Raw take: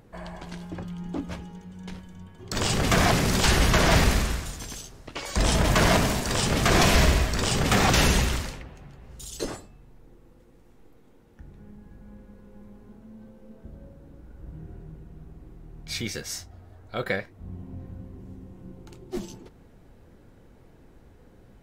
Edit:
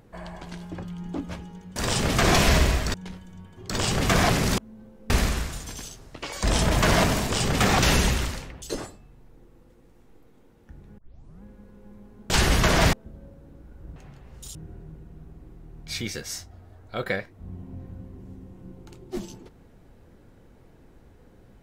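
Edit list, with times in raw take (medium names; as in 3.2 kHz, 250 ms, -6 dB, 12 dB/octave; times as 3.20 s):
3.40–4.03 s: swap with 13.00–13.52 s
6.23–7.41 s: move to 1.76 s
8.73–9.32 s: move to 14.55 s
11.68 s: tape start 0.45 s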